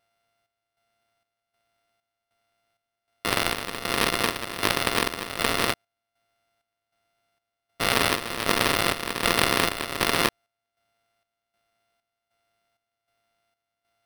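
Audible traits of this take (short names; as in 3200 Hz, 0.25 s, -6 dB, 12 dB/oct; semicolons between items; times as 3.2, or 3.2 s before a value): a buzz of ramps at a fixed pitch in blocks of 64 samples; chopped level 1.3 Hz, depth 65%, duty 60%; aliases and images of a low sample rate 7000 Hz, jitter 0%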